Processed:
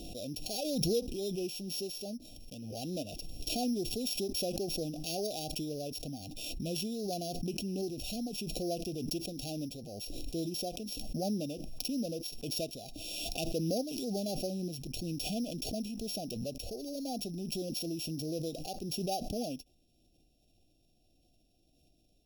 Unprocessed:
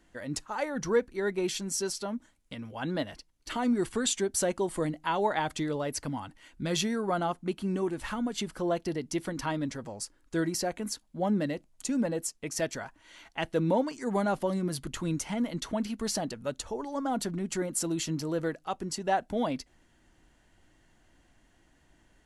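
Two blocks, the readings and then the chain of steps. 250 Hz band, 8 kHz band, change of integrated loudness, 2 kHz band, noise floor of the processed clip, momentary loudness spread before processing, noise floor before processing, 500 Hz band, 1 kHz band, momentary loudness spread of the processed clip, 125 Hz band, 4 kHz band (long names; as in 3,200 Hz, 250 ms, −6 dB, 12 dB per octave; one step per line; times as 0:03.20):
−5.0 dB, −6.5 dB, −5.0 dB, −13.5 dB, −70 dBFS, 9 LU, −66 dBFS, −6.0 dB, −11.0 dB, 8 LU, −4.0 dB, +0.5 dB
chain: samples sorted by size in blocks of 8 samples
linear-phase brick-wall band-stop 790–2,400 Hz
background raised ahead of every attack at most 22 dB per second
level −7 dB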